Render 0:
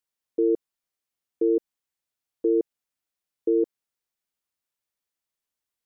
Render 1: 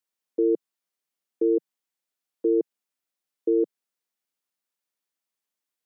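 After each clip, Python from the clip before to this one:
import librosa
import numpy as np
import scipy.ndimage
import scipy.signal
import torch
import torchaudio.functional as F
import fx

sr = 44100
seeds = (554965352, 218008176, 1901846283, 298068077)

y = scipy.signal.sosfilt(scipy.signal.butter(6, 160.0, 'highpass', fs=sr, output='sos'), x)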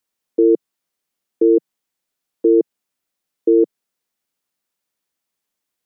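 y = fx.low_shelf(x, sr, hz=360.0, db=5.0)
y = y * 10.0 ** (6.5 / 20.0)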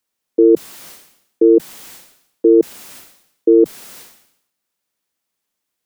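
y = fx.sustainer(x, sr, db_per_s=77.0)
y = y * 10.0 ** (2.5 / 20.0)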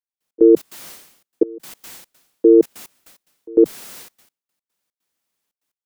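y = fx.step_gate(x, sr, bpm=147, pattern='..x.xx.xxxxx.x', floor_db=-24.0, edge_ms=4.5)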